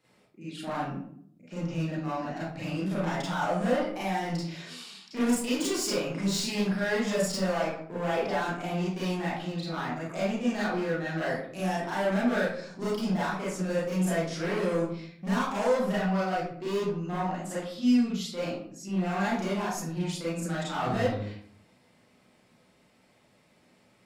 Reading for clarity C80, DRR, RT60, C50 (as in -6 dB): 4.5 dB, -10.0 dB, 0.65 s, -1.5 dB